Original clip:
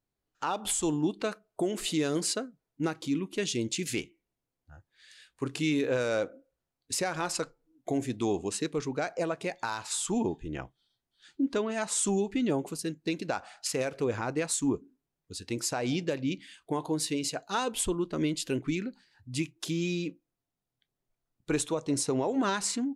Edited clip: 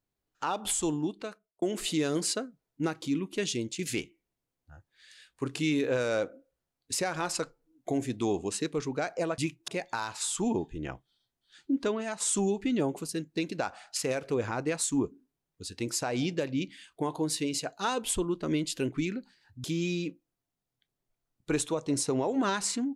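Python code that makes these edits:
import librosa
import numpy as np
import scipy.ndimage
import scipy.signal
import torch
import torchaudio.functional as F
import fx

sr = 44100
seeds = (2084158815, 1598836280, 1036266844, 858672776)

y = fx.edit(x, sr, fx.fade_out_span(start_s=0.8, length_s=0.82),
    fx.fade_out_to(start_s=3.51, length_s=0.28, floor_db=-8.0),
    fx.fade_out_to(start_s=11.64, length_s=0.26, floor_db=-6.5),
    fx.move(start_s=19.34, length_s=0.3, to_s=9.38), tone=tone)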